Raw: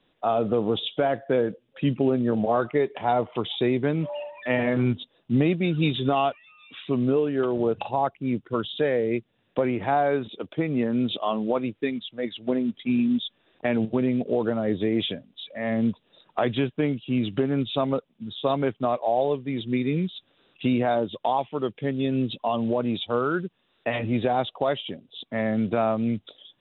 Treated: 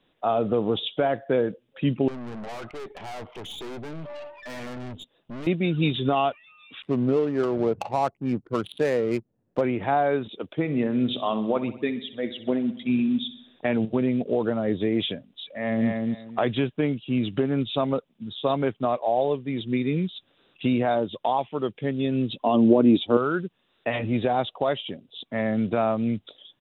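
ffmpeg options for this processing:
-filter_complex "[0:a]asettb=1/sr,asplit=3[a][b][c];[a]atrim=end=2.084[d];[b]atrim=start=2.08:end=5.47,asetpts=PTS-STARTPTS,afade=t=in:d=0.004:c=qsin,afade=t=out:st=3.386:d=0.004:c=qsin,aeval=exprs='(tanh(56.2*val(0)+0.5)-tanh(0.5))/56.2':c=same[e];[c]atrim=start=5.466[f];[d][e]acrossfade=d=0.004:c1=hsin:c2=qsin[g];[g][f]acrossfade=d=0.004:c1=qsin:c2=hsin,asettb=1/sr,asplit=3[h][i][j];[h]atrim=end=6.824[k];[i]atrim=start=6.82:end=9.61,asetpts=PTS-STARTPTS,afade=t=in:d=0.004:c=qsin,afade=t=out:st=2.786:d=0.004:c=qsin,adynamicsmooth=sensitivity=4.5:basefreq=580[l];[j]atrim=start=9.606[m];[k][l]acrossfade=d=0.004:c1=hsin:c2=qsin[n];[n][m]acrossfade=d=0.004:c1=qsin:c2=hsin,asettb=1/sr,asplit=3[o][p][q];[o]atrim=end=10.574[r];[p]atrim=start=10.57:end=13.73,asetpts=PTS-STARTPTS,afade=t=in:d=0.004:c=qsin,afade=t=out:st=3.156:d=0.004:c=qsin,aecho=1:1:64|128|192|256|320|384:0.2|0.114|0.0648|0.037|0.0211|0.012,atrim=end_sample=139356[s];[q]atrim=start=13.726[t];[r][s]acrossfade=d=0.004:c1=hsin:c2=qsin[u];[u][t]acrossfade=d=0.004:c1=qsin:c2=hsin,asplit=2[v][w];[w]afade=t=in:st=15.49:d=0.01,afade=t=out:st=15.9:d=0.01,aecho=0:1:240|480|720:0.668344|0.133669|0.0267338[x];[v][x]amix=inputs=2:normalize=0,asettb=1/sr,asplit=3[y][z][aa];[y]atrim=end=22.424[ab];[z]atrim=start=22.42:end=23.17,asetpts=PTS-STARTPTS,afade=t=in:d=0.004:c=qsin,afade=t=out:st=0.746:d=0.004:c=qsin,equalizer=f=300:w=1.4:g=14.5[ac];[aa]atrim=start=23.166[ad];[ab][ac]acrossfade=d=0.004:c1=hsin:c2=qsin[ae];[ae][ad]acrossfade=d=0.004:c1=qsin:c2=hsin"

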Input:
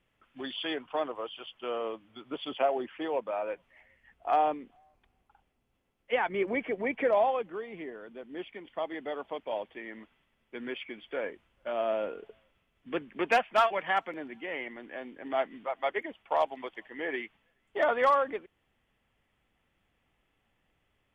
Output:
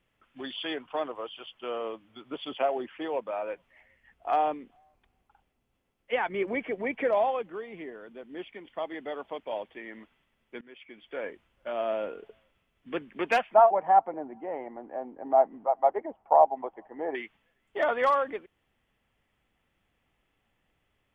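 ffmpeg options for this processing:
-filter_complex "[0:a]asettb=1/sr,asplit=3[a][b][c];[a]atrim=end=13.544[d];[b]atrim=start=13.54:end=17.15,asetpts=PTS-STARTPTS,afade=t=in:d=0.004:c=qsin,afade=t=out:st=3.606:d=0.004:c=qsin,lowpass=f=800:t=q:w=3.7[e];[c]atrim=start=17.146[f];[d][e]acrossfade=d=0.004:c1=hsin:c2=qsin[g];[g][f]acrossfade=d=0.004:c1=qsin:c2=hsin,asplit=2[h][i];[h]atrim=end=10.61,asetpts=PTS-STARTPTS,afade=t=out:st=10.606:d=0.004:c=hsin:silence=0.0668344[j];[i]atrim=start=10.61,asetpts=PTS-STARTPTS,afade=t=in:d=0.7:silence=0.0668344[k];[j][k]concat=n=2:v=0:a=1"

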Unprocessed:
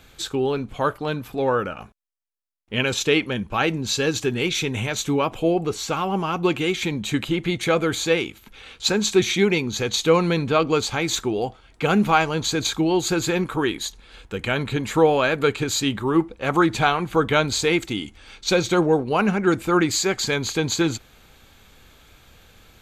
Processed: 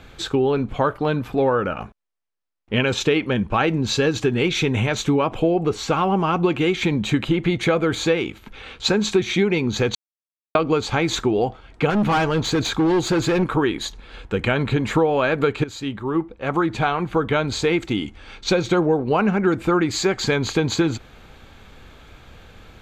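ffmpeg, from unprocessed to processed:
-filter_complex "[0:a]asettb=1/sr,asplit=3[a][b][c];[a]atrim=end=11.904[d];[b]atrim=start=11.9:end=13.43,asetpts=PTS-STARTPTS,afade=t=in:d=0.004:c=qsin,afade=t=out:st=1.526:d=0.004:c=qsin,asoftclip=type=hard:threshold=-21dB[e];[c]atrim=start=13.426[f];[d][e]acrossfade=d=0.004:c1=hsin:c2=qsin[g];[g][f]acrossfade=d=0.004:c1=qsin:c2=hsin,asplit=4[h][i][j][k];[h]atrim=end=9.95,asetpts=PTS-STARTPTS,afade=t=out:st=9.946:d=0.004:c=hsin[l];[i]atrim=start=9.95:end=10.55,asetpts=PTS-STARTPTS,volume=0[m];[j]atrim=start=10.55:end=15.64,asetpts=PTS-STARTPTS,afade=t=in:d=0.004:c=hsin,afade=t=out:st=5.086:d=0.004:c=hsin:silence=0.223872[n];[k]atrim=start=15.64,asetpts=PTS-STARTPTS,afade=t=in:d=3.16:silence=0.223872[o];[l][m][n][o]concat=n=4:v=0:a=1,aemphasis=mode=reproduction:type=75kf,acompressor=threshold=-23dB:ratio=5,volume=7.5dB"

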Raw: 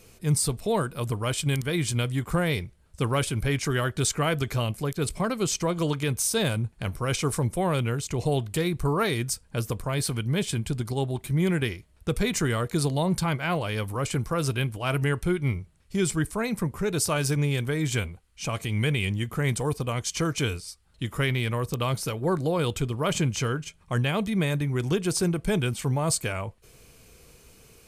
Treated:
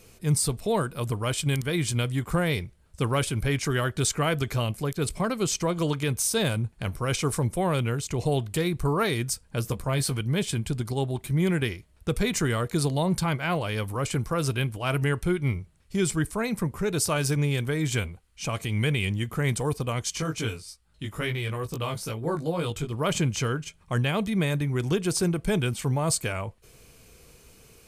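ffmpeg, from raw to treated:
-filter_complex "[0:a]asettb=1/sr,asplit=3[a][b][c];[a]atrim=end=9.634[d];[b]atrim=start=9.63:end=10.21,asetpts=PTS-STARTPTS,afade=t=in:d=0.004:c=qsin,afade=t=out:st=0.576:d=0.004:c=qsin,asplit=2[e][f];[f]adelay=15,volume=-8.5dB[g];[e][g]amix=inputs=2:normalize=0,atrim=end_sample=25578[h];[c]atrim=start=10.206[i];[d][h]acrossfade=d=0.004:c1=hsin:c2=qsin[j];[j][i]acrossfade=d=0.004:c1=qsin:c2=hsin,asplit=3[k][l][m];[k]afade=t=out:st=20.16:d=0.02[n];[l]flanger=delay=17.5:depth=2.2:speed=2.3,afade=t=in:st=20.16:d=0.02,afade=t=out:st=22.91:d=0.02[o];[m]afade=t=in:st=22.91:d=0.02[p];[n][o][p]amix=inputs=3:normalize=0"

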